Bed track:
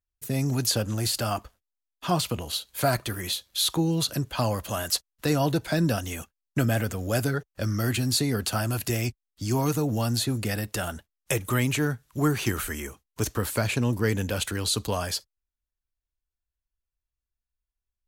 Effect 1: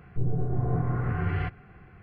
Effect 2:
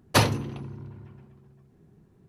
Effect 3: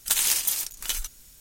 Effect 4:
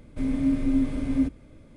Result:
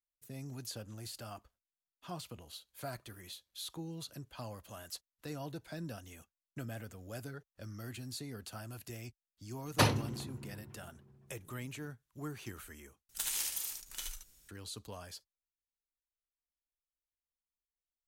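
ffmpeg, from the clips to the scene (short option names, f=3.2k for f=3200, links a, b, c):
-filter_complex "[0:a]volume=-19dB[a];[3:a]aecho=1:1:32|73:0.316|0.631[b];[a]asplit=2[c][d];[c]atrim=end=13.094[e];[b]atrim=end=1.4,asetpts=PTS-STARTPTS,volume=-14.5dB[f];[d]atrim=start=14.486[g];[2:a]atrim=end=2.28,asetpts=PTS-STARTPTS,volume=-7dB,afade=t=in:d=0.004:c=hsin,afade=t=out:st=2.276:d=0.004:c=hsin,adelay=9640[h];[e][f]acrossfade=d=0.004:c1=hsin:c2=hsin[i];[i][g]acrossfade=d=0.004:c1=hsin:c2=hsin[j];[j][h]amix=inputs=2:normalize=0"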